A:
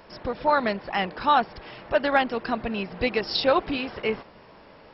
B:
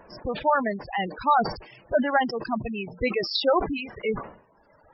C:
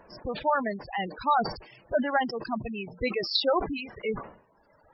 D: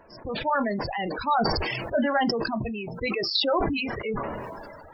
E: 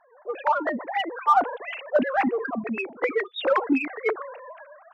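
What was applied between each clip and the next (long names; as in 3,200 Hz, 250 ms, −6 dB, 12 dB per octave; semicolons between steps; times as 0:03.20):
reverb reduction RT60 1.9 s; gate on every frequency bin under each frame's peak −15 dB strong; level that may fall only so fast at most 110 dB per second
parametric band 4,200 Hz +6.5 dB 0.27 octaves; level −3.5 dB
on a send at −11 dB: low-pass filter 2,300 Hz 24 dB per octave + convolution reverb, pre-delay 3 ms; on the sum: level that may fall only so fast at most 26 dB per second
three sine waves on the formant tracks; in parallel at −9 dB: soft clipping −25.5 dBFS, distortion −6 dB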